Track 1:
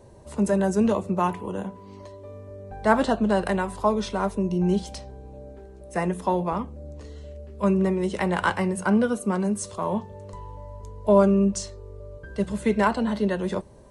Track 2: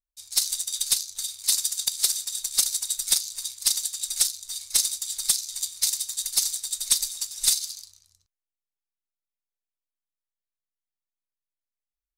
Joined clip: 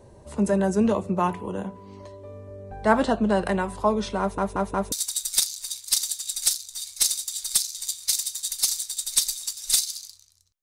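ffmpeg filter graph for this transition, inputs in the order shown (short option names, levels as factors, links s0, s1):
-filter_complex "[0:a]apad=whole_dur=10.62,atrim=end=10.62,asplit=4[s0][s1][s2][s3];[s0]atrim=end=4.382[s4];[s1]atrim=start=4.198:end=4.382[s5];[s2]atrim=start=4.198:end=4.382[s6];[s3]atrim=start=4.198:end=4.382[s7];[1:a]atrim=start=2.658:end=8.36[s8];[s4][s5]acrossfade=d=0.004:c1=hsin:c2=hsin[s9];[s9][s6]acrossfade=d=0.004:c1=hsin:c2=hsin[s10];[s10][s7]acrossfade=d=0.004:c1=hsin:c2=hsin[s11];[s11][s8]acrossfade=d=0.004:c1=hsin:c2=hsin"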